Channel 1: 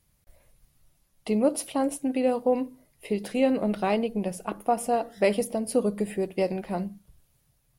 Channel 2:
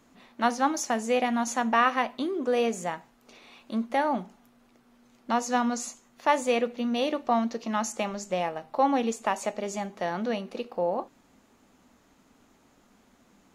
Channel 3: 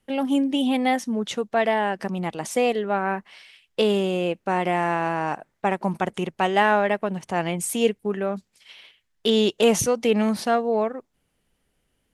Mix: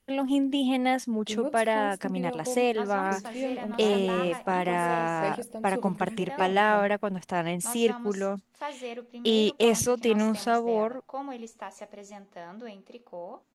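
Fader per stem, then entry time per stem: −9.5, −12.5, −3.5 decibels; 0.00, 2.35, 0.00 seconds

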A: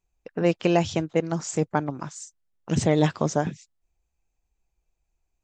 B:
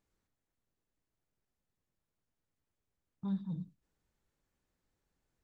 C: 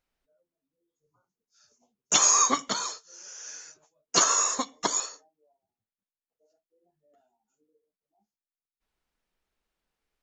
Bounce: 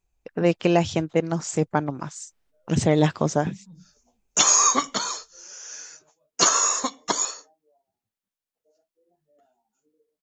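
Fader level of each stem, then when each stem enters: +1.5, −9.0, +3.0 decibels; 0.00, 0.20, 2.25 seconds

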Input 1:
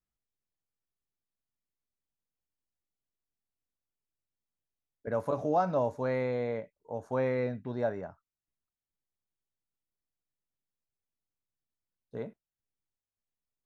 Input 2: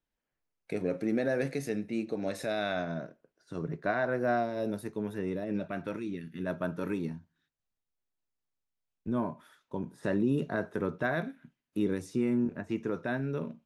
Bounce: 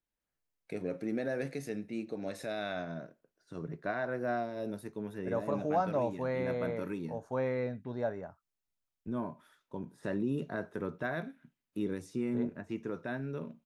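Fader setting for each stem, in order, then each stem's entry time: −3.0, −5.0 decibels; 0.20, 0.00 seconds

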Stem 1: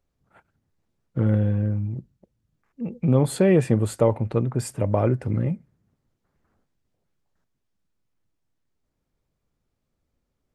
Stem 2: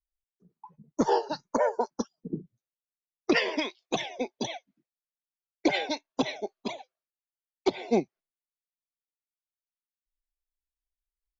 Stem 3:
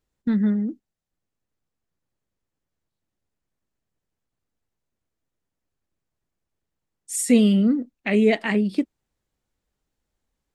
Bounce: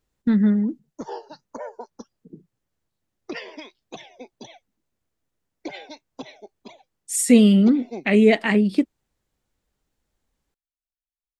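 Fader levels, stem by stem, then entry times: muted, −9.5 dB, +3.0 dB; muted, 0.00 s, 0.00 s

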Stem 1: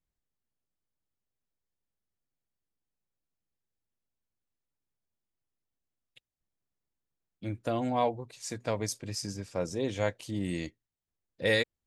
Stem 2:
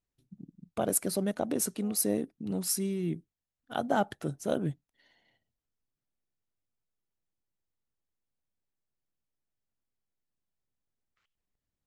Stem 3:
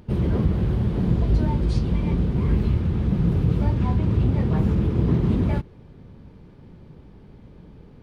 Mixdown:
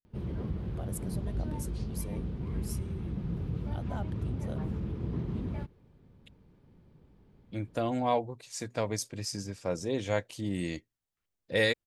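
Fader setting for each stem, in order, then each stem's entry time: 0.0, −14.5, −14.0 decibels; 0.10, 0.00, 0.05 seconds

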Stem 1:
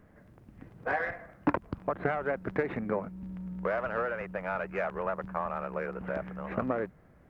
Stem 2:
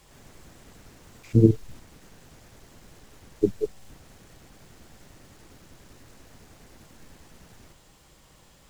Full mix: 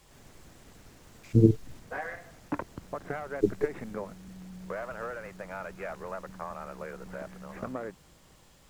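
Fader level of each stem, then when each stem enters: −6.0, −3.0 decibels; 1.05, 0.00 seconds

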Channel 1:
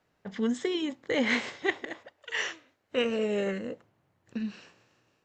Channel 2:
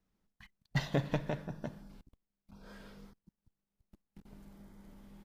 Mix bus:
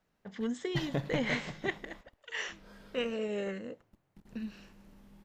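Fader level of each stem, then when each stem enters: −6.0, −2.0 decibels; 0.00, 0.00 seconds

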